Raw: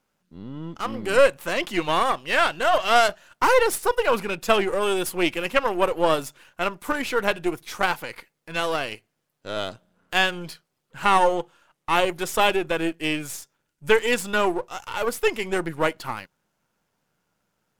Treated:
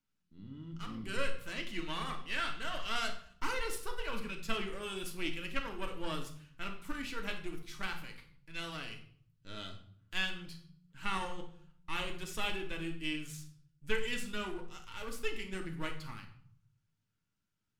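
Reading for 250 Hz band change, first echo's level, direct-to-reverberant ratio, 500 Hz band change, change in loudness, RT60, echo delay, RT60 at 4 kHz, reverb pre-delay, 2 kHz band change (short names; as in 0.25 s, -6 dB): -13.5 dB, none, 3.0 dB, -21.0 dB, -16.5 dB, 0.55 s, none, 0.45 s, 3 ms, -14.5 dB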